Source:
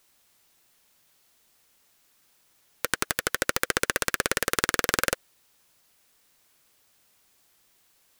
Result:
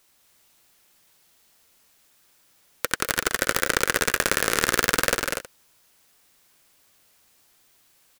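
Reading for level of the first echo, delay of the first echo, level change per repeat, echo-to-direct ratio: -18.0 dB, 66 ms, no steady repeat, -3.5 dB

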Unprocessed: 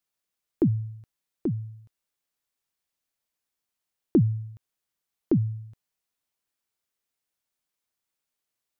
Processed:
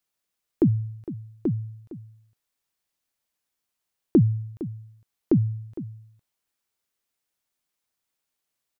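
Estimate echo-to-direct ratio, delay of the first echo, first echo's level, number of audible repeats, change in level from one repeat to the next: -15.0 dB, 0.459 s, -15.0 dB, 1, no steady repeat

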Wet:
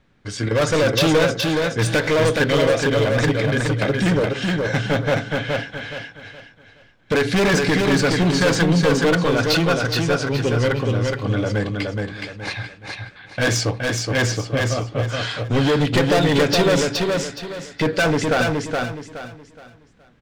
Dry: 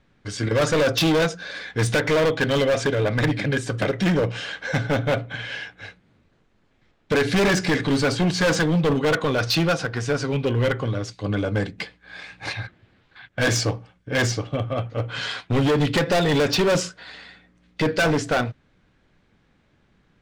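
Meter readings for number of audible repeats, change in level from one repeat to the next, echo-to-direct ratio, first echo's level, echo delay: 4, -10.0 dB, -3.0 dB, -3.5 dB, 0.42 s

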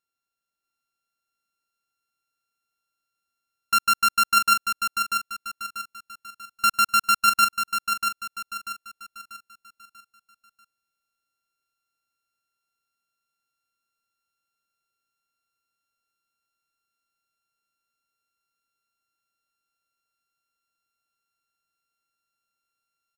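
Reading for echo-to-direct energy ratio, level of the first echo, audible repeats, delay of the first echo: -5.5 dB, -6.0 dB, 4, 0.64 s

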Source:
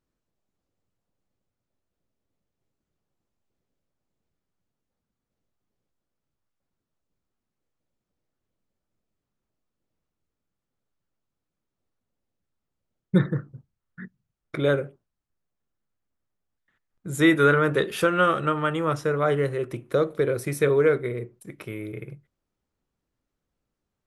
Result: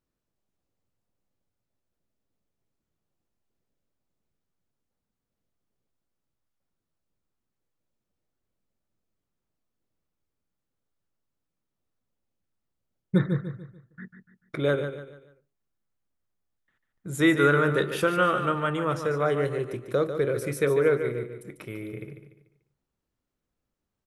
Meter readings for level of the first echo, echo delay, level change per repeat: -9.0 dB, 0.146 s, -8.5 dB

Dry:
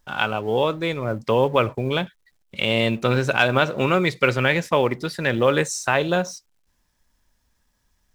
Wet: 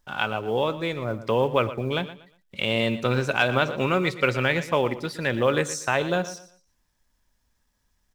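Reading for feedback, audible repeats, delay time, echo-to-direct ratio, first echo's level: 28%, 2, 0.119 s, -14.0 dB, -14.5 dB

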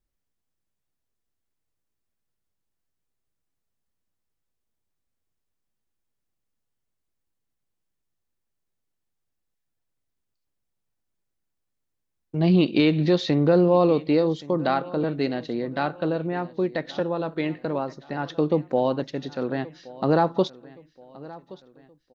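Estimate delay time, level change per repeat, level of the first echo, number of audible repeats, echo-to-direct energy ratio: 1.123 s, -7.5 dB, -20.0 dB, 3, -19.0 dB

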